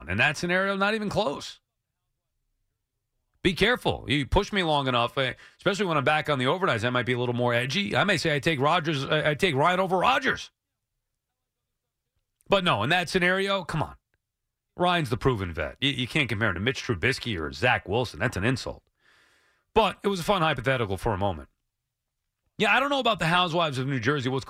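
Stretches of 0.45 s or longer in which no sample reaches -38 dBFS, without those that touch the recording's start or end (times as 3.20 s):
1.52–3.45 s
10.46–12.41 s
13.92–14.77 s
18.75–19.76 s
21.43–22.59 s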